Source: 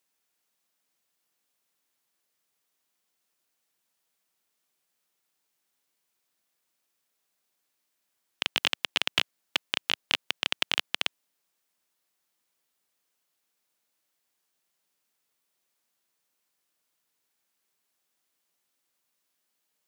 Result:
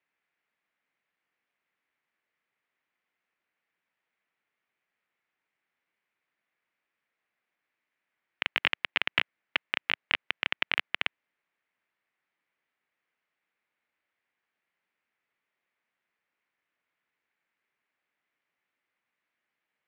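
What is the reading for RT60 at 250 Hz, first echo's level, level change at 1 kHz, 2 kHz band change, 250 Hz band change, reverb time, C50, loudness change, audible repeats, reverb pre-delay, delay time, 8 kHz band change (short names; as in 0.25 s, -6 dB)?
none, none, 0.0 dB, +2.5 dB, -2.5 dB, none, none, -1.0 dB, none, none, none, under -20 dB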